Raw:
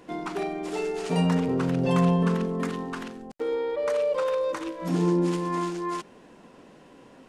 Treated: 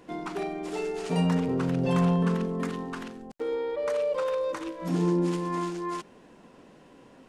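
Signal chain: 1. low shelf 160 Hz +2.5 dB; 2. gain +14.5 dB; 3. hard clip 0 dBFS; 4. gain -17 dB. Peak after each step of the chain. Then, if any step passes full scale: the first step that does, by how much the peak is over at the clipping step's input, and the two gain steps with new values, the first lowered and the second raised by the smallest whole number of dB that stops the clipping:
-9.5, +5.0, 0.0, -17.0 dBFS; step 2, 5.0 dB; step 2 +9.5 dB, step 4 -12 dB

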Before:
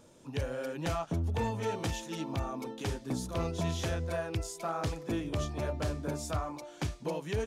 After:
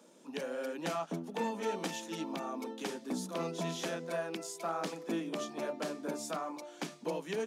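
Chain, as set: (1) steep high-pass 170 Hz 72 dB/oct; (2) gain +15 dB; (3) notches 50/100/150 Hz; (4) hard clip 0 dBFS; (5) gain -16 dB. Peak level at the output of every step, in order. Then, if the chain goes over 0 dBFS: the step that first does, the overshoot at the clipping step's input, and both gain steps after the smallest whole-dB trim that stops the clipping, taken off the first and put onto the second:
-20.0, -5.0, -5.0, -5.0, -21.0 dBFS; no overload

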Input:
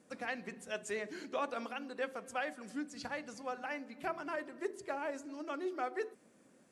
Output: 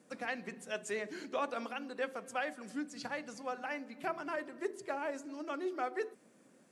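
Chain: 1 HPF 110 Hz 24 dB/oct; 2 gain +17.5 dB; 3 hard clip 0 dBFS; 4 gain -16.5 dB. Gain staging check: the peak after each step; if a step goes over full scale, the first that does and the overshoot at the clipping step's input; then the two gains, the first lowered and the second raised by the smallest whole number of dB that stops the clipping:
-23.0, -5.5, -5.5, -22.0 dBFS; no overload

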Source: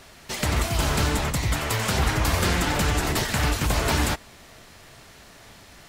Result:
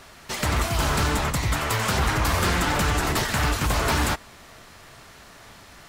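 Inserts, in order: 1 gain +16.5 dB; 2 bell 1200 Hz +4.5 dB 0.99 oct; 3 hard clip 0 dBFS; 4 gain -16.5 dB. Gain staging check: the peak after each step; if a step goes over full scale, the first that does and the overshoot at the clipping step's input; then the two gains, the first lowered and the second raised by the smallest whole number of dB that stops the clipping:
+6.5, +7.5, 0.0, -16.5 dBFS; step 1, 7.5 dB; step 1 +8.5 dB, step 4 -8.5 dB

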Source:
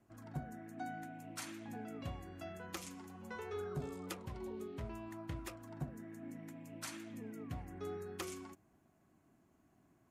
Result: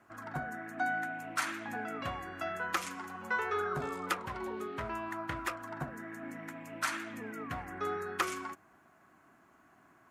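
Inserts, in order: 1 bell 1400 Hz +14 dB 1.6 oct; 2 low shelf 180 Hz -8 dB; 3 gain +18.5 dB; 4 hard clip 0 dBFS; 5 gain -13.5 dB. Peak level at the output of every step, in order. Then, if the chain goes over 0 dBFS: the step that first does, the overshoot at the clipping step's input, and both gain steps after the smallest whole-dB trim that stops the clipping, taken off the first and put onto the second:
-22.0, -22.0, -3.5, -3.5, -17.0 dBFS; no overload

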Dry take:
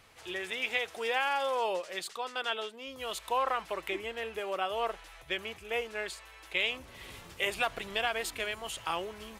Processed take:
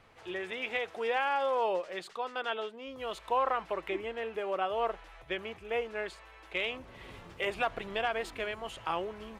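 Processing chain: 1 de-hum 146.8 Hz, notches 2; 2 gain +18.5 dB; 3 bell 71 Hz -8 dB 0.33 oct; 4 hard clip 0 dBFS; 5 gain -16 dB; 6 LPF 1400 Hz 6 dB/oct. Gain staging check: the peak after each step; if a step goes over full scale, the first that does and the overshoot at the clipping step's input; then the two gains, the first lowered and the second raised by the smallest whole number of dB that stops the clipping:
-15.0, +3.5, +3.5, 0.0, -16.0, -18.0 dBFS; step 2, 3.5 dB; step 2 +14.5 dB, step 5 -12 dB

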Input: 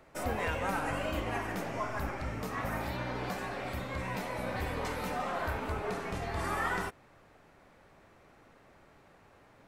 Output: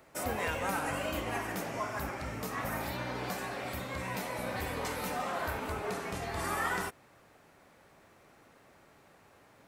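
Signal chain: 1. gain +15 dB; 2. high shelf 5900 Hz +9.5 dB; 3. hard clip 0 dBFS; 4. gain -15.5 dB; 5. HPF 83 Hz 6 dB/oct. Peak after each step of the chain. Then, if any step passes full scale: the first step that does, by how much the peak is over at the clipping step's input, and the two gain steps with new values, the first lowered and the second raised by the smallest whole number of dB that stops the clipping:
-4.5, -4.0, -4.0, -19.5, -19.5 dBFS; no overload

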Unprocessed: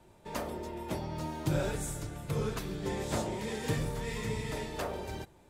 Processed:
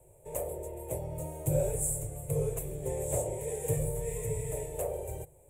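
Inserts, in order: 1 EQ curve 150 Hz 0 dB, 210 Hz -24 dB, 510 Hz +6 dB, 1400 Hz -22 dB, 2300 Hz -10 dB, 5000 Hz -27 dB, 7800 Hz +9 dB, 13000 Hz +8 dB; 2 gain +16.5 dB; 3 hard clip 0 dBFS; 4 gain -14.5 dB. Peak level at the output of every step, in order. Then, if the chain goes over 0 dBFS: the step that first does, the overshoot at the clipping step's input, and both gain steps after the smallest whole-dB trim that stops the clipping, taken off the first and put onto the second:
-19.0, -2.5, -2.5, -17.0 dBFS; no overload

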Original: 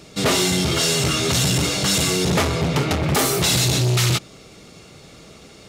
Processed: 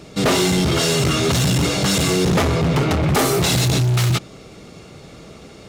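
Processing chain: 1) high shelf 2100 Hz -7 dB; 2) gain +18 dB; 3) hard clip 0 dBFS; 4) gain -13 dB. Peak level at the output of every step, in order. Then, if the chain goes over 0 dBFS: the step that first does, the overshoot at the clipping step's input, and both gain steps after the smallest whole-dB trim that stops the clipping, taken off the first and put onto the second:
-10.0, +8.0, 0.0, -13.0 dBFS; step 2, 8.0 dB; step 2 +10 dB, step 4 -5 dB

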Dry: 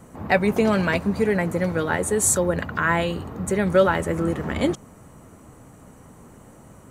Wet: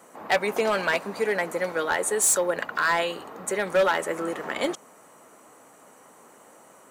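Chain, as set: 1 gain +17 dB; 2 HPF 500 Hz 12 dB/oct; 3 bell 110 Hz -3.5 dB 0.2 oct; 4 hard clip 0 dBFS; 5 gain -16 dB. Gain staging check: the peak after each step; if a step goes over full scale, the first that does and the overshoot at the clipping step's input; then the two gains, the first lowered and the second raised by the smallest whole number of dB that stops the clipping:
+11.0, +9.5, +9.5, 0.0, -16.0 dBFS; step 1, 9.5 dB; step 1 +7 dB, step 5 -6 dB

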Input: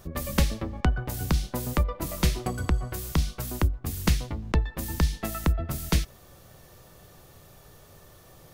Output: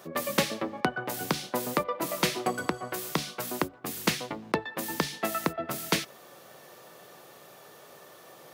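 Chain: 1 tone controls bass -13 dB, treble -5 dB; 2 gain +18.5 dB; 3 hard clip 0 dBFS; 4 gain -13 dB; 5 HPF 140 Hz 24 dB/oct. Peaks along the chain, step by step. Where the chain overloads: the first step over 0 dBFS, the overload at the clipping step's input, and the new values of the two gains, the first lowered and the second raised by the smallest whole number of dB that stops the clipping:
-9.5, +9.0, 0.0, -13.0, -9.5 dBFS; step 2, 9.0 dB; step 2 +9.5 dB, step 4 -4 dB

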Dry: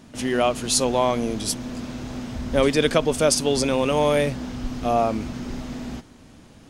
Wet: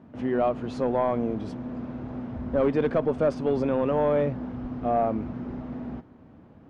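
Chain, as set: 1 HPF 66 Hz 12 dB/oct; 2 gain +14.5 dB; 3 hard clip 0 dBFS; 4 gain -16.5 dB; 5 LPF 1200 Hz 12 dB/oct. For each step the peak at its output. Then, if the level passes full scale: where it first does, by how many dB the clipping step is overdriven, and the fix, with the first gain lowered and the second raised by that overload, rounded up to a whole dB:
-5.0, +9.5, 0.0, -16.5, -16.0 dBFS; step 2, 9.5 dB; step 2 +4.5 dB, step 4 -6.5 dB

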